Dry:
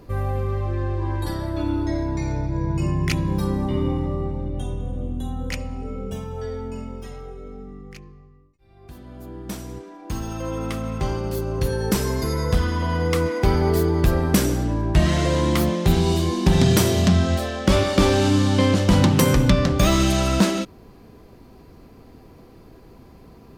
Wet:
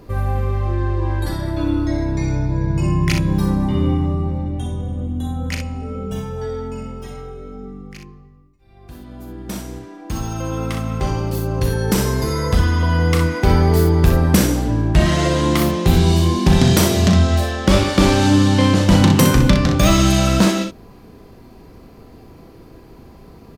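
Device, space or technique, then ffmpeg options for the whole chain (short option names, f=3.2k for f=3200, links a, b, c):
slapback doubling: -filter_complex "[0:a]asplit=3[a][b][c];[b]adelay=37,volume=-8dB[d];[c]adelay=62,volume=-6.5dB[e];[a][d][e]amix=inputs=3:normalize=0,volume=3dB"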